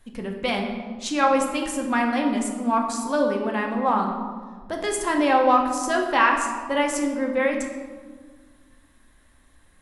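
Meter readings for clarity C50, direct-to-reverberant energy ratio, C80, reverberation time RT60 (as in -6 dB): 5.0 dB, 0.5 dB, 6.5 dB, 1.6 s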